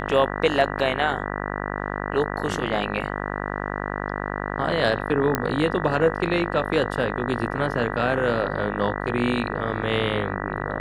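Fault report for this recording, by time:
mains buzz 50 Hz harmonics 39 −29 dBFS
0:05.35: click −7 dBFS

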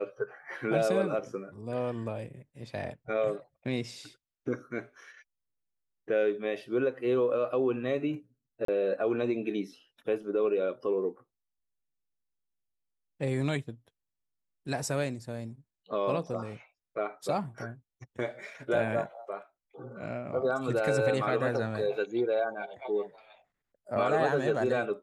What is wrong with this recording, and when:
0:08.65–0:08.68: drop-out 33 ms

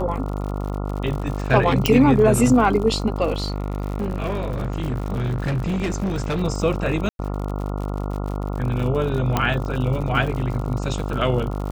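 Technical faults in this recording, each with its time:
mains buzz 50 Hz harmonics 28 −26 dBFS
surface crackle 73 per second −29 dBFS
0:01.86: click
0:03.36–0:06.43: clipping −19.5 dBFS
0:07.09–0:07.19: drop-out 102 ms
0:09.37: click −6 dBFS

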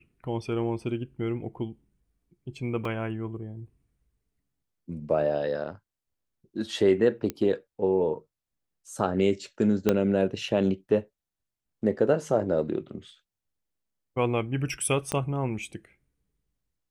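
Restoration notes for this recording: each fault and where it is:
0:02.85: drop-out 2.7 ms
0:07.30: click −16 dBFS
0:09.89: click −9 dBFS
0:15.12: click −14 dBFS

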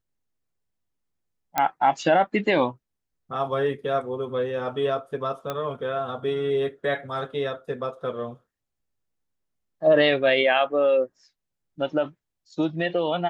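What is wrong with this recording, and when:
0:01.58: click −8 dBFS
0:05.50: click −15 dBFS

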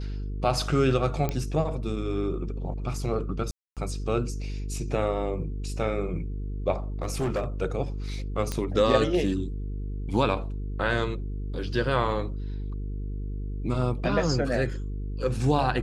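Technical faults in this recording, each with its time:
mains buzz 50 Hz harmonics 9 −32 dBFS
0:01.29: click −14 dBFS
0:03.51–0:03.77: drop-out 257 ms
0:07.02–0:07.46: clipping −23 dBFS
0:08.52: click −15 dBFS

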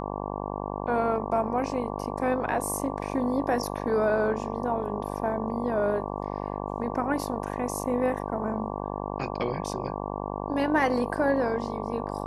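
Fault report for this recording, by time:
mains buzz 50 Hz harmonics 23 −33 dBFS

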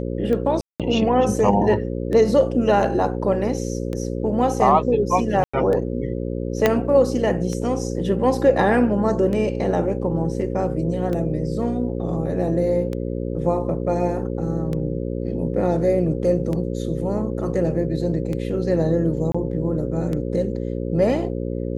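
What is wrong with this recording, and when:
mains buzz 60 Hz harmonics 9 −26 dBFS
scratch tick 33 1/3 rpm −16 dBFS
0:00.61–0:00.80: drop-out 187 ms
0:05.44–0:05.54: drop-out 95 ms
0:06.66: click −3 dBFS
0:19.32–0:19.34: drop-out 25 ms

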